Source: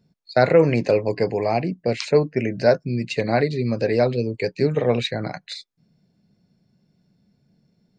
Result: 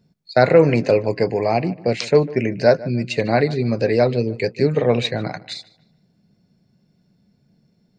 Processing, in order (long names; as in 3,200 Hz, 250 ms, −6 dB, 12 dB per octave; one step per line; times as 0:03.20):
feedback echo with a low-pass in the loop 150 ms, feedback 35%, low-pass 3,300 Hz, level −19 dB
level +2.5 dB